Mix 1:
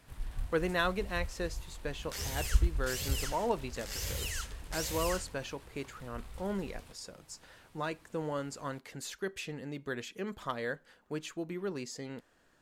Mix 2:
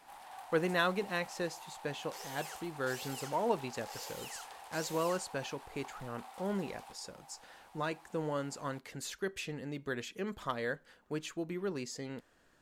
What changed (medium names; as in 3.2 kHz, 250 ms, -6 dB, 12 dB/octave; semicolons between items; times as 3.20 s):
first sound: add resonant high-pass 790 Hz, resonance Q 8.2; second sound: add ladder high-pass 410 Hz, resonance 45%